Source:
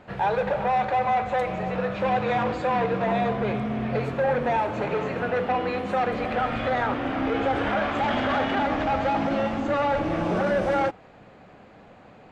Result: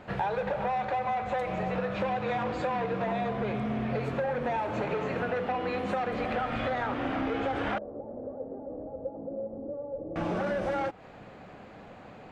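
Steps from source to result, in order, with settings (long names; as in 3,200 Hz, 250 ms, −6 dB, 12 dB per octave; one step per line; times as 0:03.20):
downward compressor, threshold −29 dBFS, peak gain reduction 9.5 dB
0:07.78–0:10.16: transistor ladder low-pass 540 Hz, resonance 70%
level +1.5 dB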